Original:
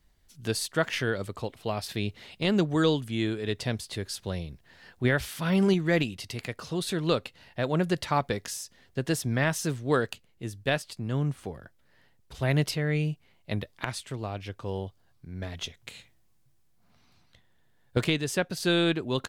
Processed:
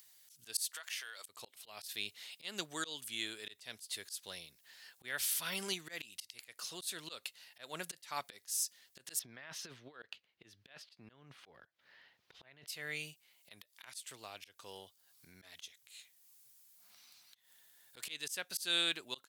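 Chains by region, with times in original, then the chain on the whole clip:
0.68–1.29 s: high-pass 800 Hz + compression 8:1, threshold -35 dBFS
9.19–12.67 s: compressor with a negative ratio -30 dBFS, ratio -0.5 + distance through air 300 m
whole clip: differentiator; slow attack 185 ms; upward compressor, threshold -59 dBFS; trim +5.5 dB

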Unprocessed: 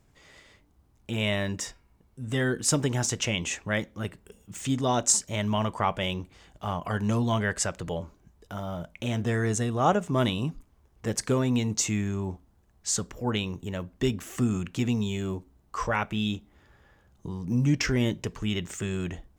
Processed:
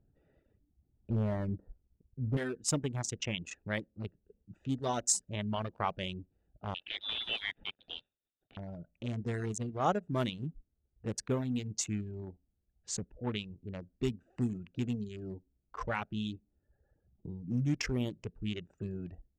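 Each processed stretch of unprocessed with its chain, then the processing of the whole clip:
1.10–2.37 s: low-pass 1.3 kHz 24 dB/octave + bass shelf 170 Hz +7.5 dB + waveshaping leveller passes 1
6.74–8.57 s: block-companded coder 3-bit + peaking EQ 75 Hz -11 dB 1.7 oct + frequency inversion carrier 3.7 kHz
whole clip: local Wiener filter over 41 samples; level-controlled noise filter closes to 3 kHz, open at -21.5 dBFS; reverb removal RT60 0.9 s; trim -6 dB

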